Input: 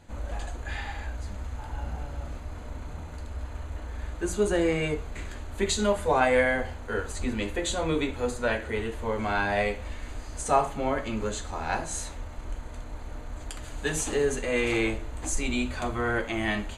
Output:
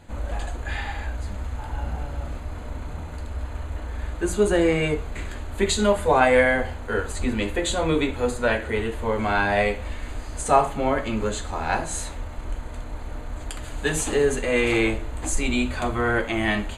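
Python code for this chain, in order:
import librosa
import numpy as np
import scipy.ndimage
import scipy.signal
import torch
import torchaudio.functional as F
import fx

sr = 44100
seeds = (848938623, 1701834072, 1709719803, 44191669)

y = fx.peak_eq(x, sr, hz=5700.0, db=-6.5, octaves=0.39)
y = F.gain(torch.from_numpy(y), 5.0).numpy()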